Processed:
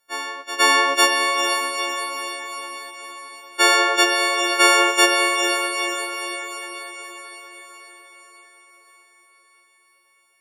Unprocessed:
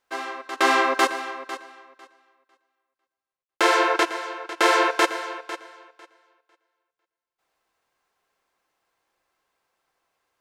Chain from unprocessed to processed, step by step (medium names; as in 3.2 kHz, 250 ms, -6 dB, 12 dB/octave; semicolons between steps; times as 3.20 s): partials quantised in pitch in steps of 4 st; echo that smears into a reverb 470 ms, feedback 57%, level -4.5 dB; trim -1 dB